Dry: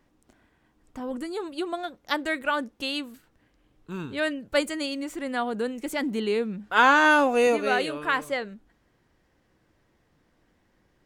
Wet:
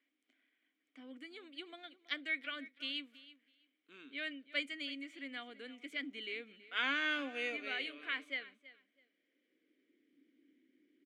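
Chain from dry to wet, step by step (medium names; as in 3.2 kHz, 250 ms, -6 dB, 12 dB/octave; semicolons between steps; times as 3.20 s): vowel filter i; feedback delay 327 ms, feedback 17%, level -18 dB; high-pass sweep 790 Hz -> 340 Hz, 8.63–10.14 s; trim +3.5 dB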